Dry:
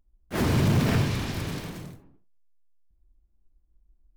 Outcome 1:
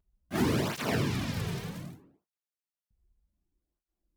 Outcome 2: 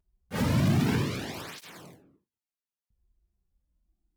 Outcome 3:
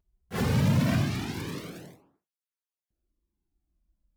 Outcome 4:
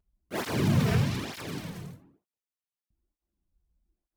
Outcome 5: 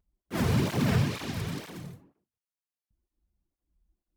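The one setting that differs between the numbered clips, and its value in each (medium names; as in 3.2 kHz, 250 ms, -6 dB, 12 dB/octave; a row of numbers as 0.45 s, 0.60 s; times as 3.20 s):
cancelling through-zero flanger, nulls at: 0.65 Hz, 0.31 Hz, 0.21 Hz, 1.1 Hz, 2.1 Hz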